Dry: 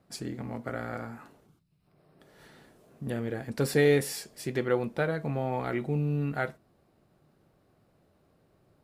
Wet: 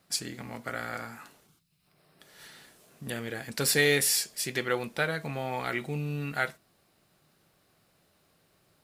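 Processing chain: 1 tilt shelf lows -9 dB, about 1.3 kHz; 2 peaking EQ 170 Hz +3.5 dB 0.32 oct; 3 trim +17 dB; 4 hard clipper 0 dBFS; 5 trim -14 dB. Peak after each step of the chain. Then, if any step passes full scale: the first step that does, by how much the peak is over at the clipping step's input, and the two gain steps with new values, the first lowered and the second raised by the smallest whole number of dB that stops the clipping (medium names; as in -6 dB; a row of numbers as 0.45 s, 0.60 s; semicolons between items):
-13.5 dBFS, -13.0 dBFS, +4.0 dBFS, 0.0 dBFS, -14.0 dBFS; step 3, 4.0 dB; step 3 +13 dB, step 5 -10 dB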